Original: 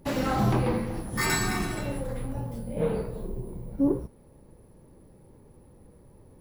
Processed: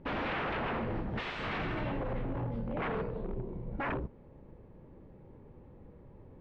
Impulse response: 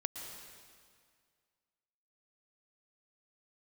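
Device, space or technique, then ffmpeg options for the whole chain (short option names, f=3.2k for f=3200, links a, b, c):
synthesiser wavefolder: -filter_complex "[0:a]asettb=1/sr,asplit=3[a][b][c];[a]atrim=end=2.894[d];[b]atrim=start=2.89:end=3.67,asetpts=PTS-STARTPTS,afade=t=in:d=0.004:c=qsin,afade=t=out:st=0.776:d=0.004:c=qsin,lowshelf=f=180:g=-4[e];[c]atrim=start=3.666[f];[d][e]acrossfade=d=0.004:c1=hsin:c2=qsin[g];[g][f]acrossfade=d=0.004:c1=qsin:c2=hsin,aeval=exprs='0.0355*(abs(mod(val(0)/0.0355+3,4)-2)-1)':c=same,lowpass=f=3k:w=0.5412,lowpass=f=3k:w=1.3066"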